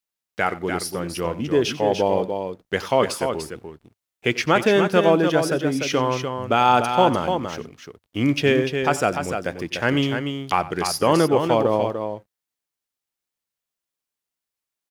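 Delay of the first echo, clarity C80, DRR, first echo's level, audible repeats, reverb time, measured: 92 ms, no reverb, no reverb, -17.5 dB, 2, no reverb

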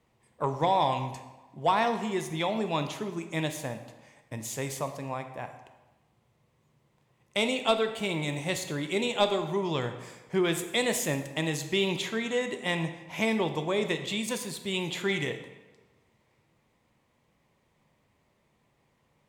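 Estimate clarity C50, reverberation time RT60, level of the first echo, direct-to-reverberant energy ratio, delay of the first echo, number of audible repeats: 9.5 dB, 1.2 s, no echo, 7.0 dB, no echo, no echo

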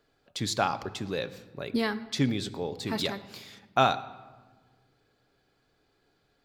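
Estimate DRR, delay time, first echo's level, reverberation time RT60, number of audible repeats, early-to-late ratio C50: 10.5 dB, no echo, no echo, 1.3 s, no echo, 15.5 dB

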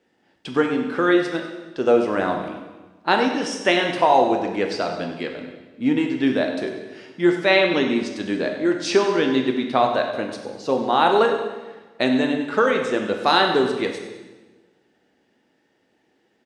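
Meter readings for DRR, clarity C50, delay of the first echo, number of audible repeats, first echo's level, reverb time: 2.5 dB, 5.0 dB, 98 ms, 1, -11.5 dB, 1.2 s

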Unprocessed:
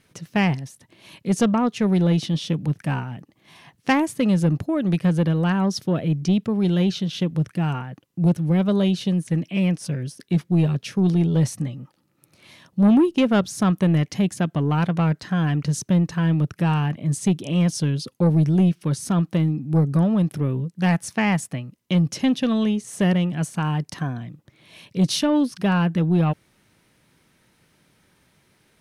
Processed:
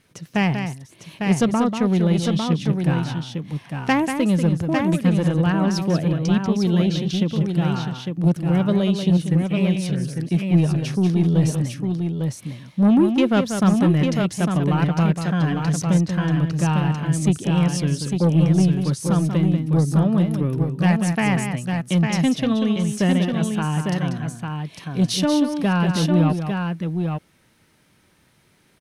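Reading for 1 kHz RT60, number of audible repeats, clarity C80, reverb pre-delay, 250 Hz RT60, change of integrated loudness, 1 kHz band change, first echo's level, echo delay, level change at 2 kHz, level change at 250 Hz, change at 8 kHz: no reverb, 2, no reverb, no reverb, no reverb, +1.5 dB, +1.5 dB, -7.5 dB, 189 ms, +2.0 dB, +1.5 dB, +1.5 dB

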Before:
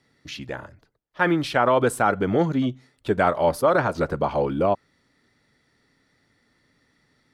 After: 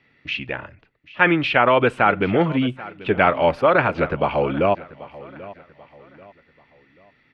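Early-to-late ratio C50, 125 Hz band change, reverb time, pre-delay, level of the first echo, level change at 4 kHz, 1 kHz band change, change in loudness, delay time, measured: no reverb, +2.0 dB, no reverb, no reverb, -18.5 dB, +6.0 dB, +3.5 dB, +3.0 dB, 787 ms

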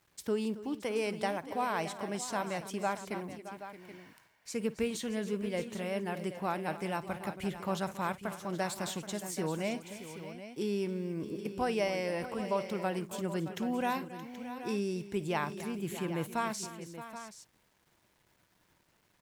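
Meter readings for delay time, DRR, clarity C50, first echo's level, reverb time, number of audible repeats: 54 ms, no reverb, no reverb, -19.5 dB, no reverb, 4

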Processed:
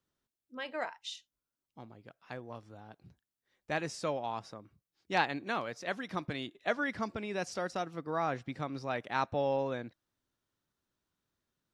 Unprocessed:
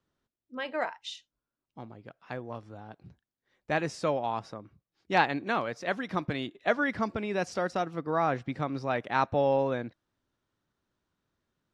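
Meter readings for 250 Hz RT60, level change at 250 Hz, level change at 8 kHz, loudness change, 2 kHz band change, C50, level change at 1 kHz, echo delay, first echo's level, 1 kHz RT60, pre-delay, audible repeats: no reverb, -6.0 dB, 0.0 dB, -5.5 dB, -4.5 dB, no reverb, -5.5 dB, no echo, no echo, no reverb, no reverb, no echo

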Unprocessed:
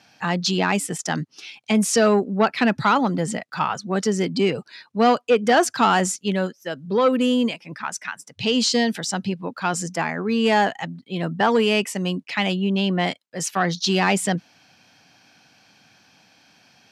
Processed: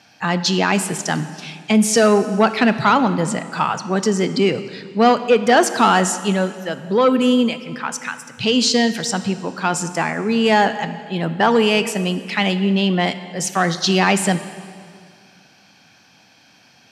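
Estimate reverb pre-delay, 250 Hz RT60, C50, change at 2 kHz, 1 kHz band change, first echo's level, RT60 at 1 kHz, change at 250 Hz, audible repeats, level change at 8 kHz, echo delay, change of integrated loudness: 15 ms, 2.3 s, 12.0 dB, +4.0 dB, +4.0 dB, no echo, 2.1 s, +4.0 dB, no echo, +4.0 dB, no echo, +3.5 dB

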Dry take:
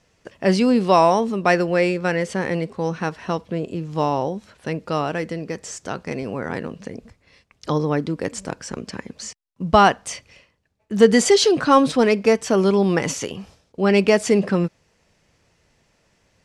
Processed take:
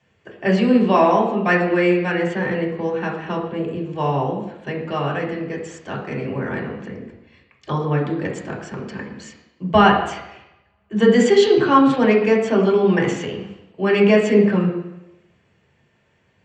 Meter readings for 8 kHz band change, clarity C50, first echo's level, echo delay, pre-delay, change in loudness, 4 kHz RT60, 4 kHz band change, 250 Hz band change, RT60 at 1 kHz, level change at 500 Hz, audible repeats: -10.5 dB, 6.0 dB, no echo, no echo, 3 ms, +1.5 dB, 0.90 s, -2.5 dB, +2.5 dB, 0.90 s, +1.0 dB, no echo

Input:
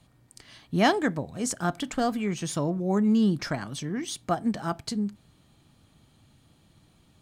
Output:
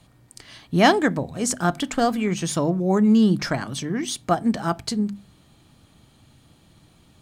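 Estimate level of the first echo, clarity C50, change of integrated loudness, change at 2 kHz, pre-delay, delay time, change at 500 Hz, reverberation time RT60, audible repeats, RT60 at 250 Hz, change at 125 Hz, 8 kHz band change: no echo, no reverb, +5.5 dB, +6.0 dB, no reverb, no echo, +6.0 dB, no reverb, no echo, no reverb, +5.0 dB, +6.0 dB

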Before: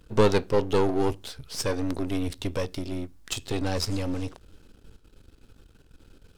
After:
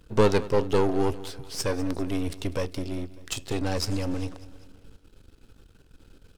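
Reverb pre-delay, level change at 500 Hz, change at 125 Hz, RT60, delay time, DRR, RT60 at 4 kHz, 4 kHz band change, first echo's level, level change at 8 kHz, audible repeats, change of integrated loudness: no reverb, 0.0 dB, +0.5 dB, no reverb, 198 ms, no reverb, no reverb, -1.0 dB, -18.0 dB, 0.0 dB, 4, 0.0 dB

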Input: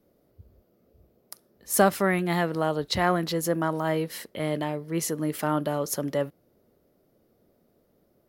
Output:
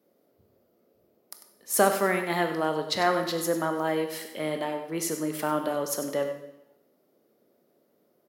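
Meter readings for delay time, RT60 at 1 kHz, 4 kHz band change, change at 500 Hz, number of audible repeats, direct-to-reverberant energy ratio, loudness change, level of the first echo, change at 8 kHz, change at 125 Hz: 97 ms, 0.90 s, 0.0 dB, 0.0 dB, 1, 5.5 dB, -1.0 dB, -11.0 dB, 0.0 dB, -8.0 dB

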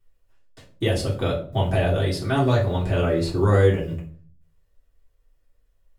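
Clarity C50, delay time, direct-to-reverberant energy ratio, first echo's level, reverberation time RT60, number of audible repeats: 9.5 dB, no echo, -5.5 dB, no echo, 0.45 s, no echo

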